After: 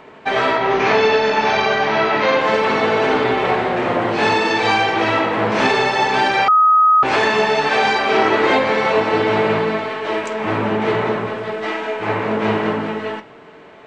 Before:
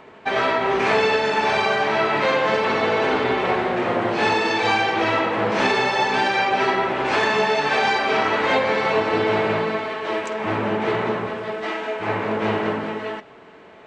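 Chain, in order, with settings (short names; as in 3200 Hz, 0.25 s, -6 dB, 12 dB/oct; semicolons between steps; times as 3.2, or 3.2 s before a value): 0.57–2.41 steep low-pass 6800 Hz 96 dB/oct; 8.14–8.54 bell 360 Hz +13 dB 0.27 oct; shoebox room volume 200 m³, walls furnished, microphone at 0.42 m; 6.48–7.03 bleep 1260 Hz -11.5 dBFS; gain +3 dB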